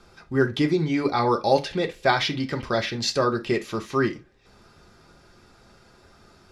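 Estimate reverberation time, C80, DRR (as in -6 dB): no single decay rate, 27.0 dB, 2.5 dB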